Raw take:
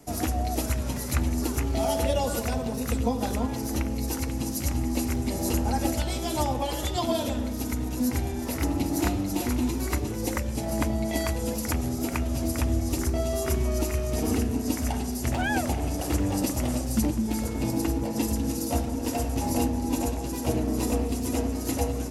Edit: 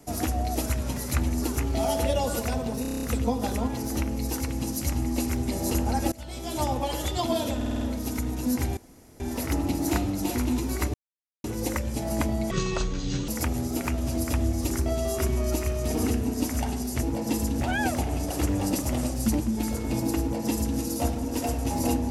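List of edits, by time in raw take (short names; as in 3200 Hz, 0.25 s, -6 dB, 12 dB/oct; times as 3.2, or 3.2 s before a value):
2.82 stutter 0.03 s, 8 plays
5.91–6.48 fade in linear, from -22 dB
7.35 stutter 0.05 s, 6 plays
8.31 insert room tone 0.43 s
10.05 insert silence 0.50 s
11.12–11.56 speed 57%
17.92–18.49 copy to 15.31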